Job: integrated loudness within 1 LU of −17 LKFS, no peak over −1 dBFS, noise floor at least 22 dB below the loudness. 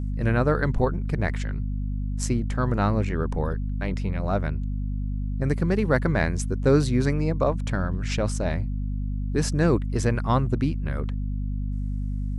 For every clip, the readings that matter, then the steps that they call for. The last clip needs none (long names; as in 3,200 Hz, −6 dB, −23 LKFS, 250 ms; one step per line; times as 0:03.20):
mains hum 50 Hz; hum harmonics up to 250 Hz; level of the hum −25 dBFS; integrated loudness −26.0 LKFS; sample peak −7.0 dBFS; target loudness −17.0 LKFS
→ hum removal 50 Hz, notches 5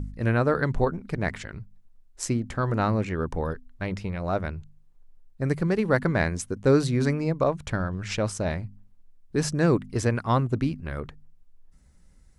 mains hum none found; integrated loudness −26.5 LKFS; sample peak −8.5 dBFS; target loudness −17.0 LKFS
→ level +9.5 dB
brickwall limiter −1 dBFS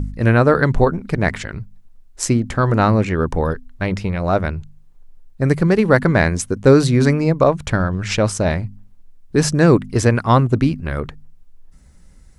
integrated loudness −17.0 LKFS; sample peak −1.0 dBFS; background noise floor −46 dBFS